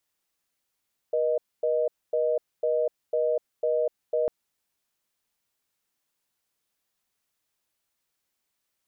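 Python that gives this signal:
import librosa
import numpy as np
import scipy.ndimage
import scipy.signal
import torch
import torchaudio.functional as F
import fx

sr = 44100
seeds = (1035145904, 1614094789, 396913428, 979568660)

y = fx.call_progress(sr, length_s=3.15, kind='reorder tone', level_db=-24.5)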